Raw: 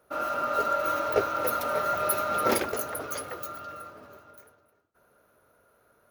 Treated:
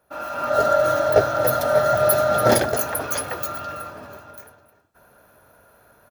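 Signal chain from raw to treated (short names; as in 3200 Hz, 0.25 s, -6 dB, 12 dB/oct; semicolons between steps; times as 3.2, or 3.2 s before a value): comb 1.2 ms, depth 37%; AGC gain up to 11.5 dB; 0.49–2.77 thirty-one-band EQ 125 Hz +11 dB, 630 Hz +7 dB, 1000 Hz -8 dB, 2500 Hz -10 dB, 16000 Hz -10 dB; gain -1 dB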